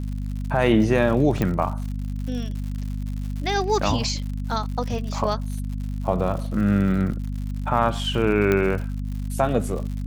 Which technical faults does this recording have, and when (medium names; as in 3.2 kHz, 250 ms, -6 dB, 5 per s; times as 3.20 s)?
crackle 120 per s -32 dBFS
hum 50 Hz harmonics 5 -28 dBFS
1.42 s: pop -10 dBFS
8.52 s: pop -9 dBFS